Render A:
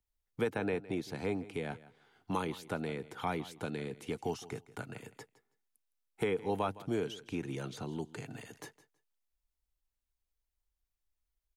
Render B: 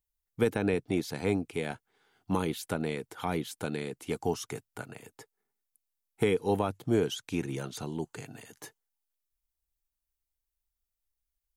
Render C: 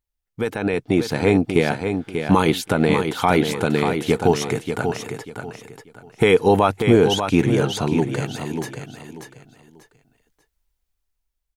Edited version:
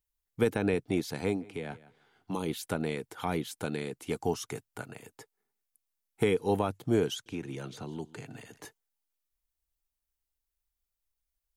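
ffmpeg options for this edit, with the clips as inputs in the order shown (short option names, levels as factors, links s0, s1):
-filter_complex "[0:a]asplit=2[s0][s1];[1:a]asplit=3[s2][s3][s4];[s2]atrim=end=1.48[s5];[s0]atrim=start=1.24:end=2.52[s6];[s3]atrim=start=2.28:end=7.262[s7];[s1]atrim=start=7.258:end=8.652[s8];[s4]atrim=start=8.648[s9];[s5][s6]acrossfade=d=0.24:c1=tri:c2=tri[s10];[s10][s7]acrossfade=d=0.24:c1=tri:c2=tri[s11];[s11][s8]acrossfade=d=0.004:c1=hsin:c2=hsin[s12];[s12][s9]acrossfade=d=0.004:c1=hsin:c2=hsin"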